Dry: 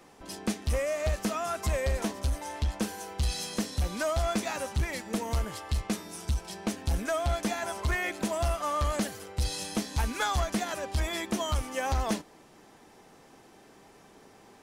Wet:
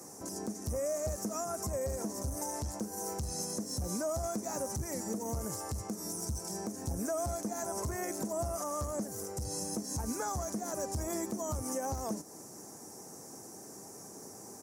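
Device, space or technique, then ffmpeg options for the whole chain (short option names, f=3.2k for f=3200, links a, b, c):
podcast mastering chain: -af "highpass=f=84:w=0.5412,highpass=f=84:w=1.3066,firequalizer=gain_entry='entry(370,0);entry(3300,-22);entry(5700,11)':delay=0.05:min_phase=1,deesser=0.8,acompressor=threshold=-37dB:ratio=2.5,alimiter=level_in=7.5dB:limit=-24dB:level=0:latency=1:release=143,volume=-7.5dB,volume=6dB" -ar 44100 -c:a libmp3lame -b:a 96k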